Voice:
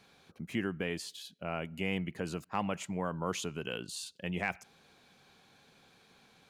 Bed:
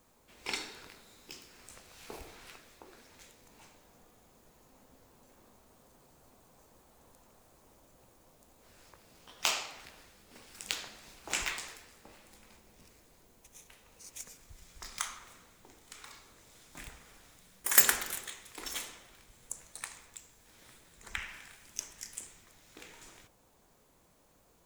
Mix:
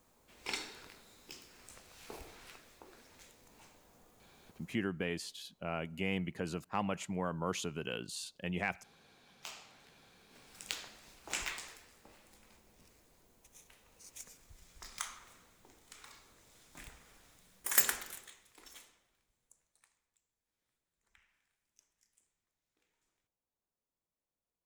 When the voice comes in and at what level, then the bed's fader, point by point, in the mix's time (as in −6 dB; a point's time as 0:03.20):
4.20 s, −1.5 dB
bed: 0:04.64 −2.5 dB
0:04.84 −17.5 dB
0:09.50 −17.5 dB
0:10.63 −4.5 dB
0:17.68 −4.5 dB
0:20.04 −30 dB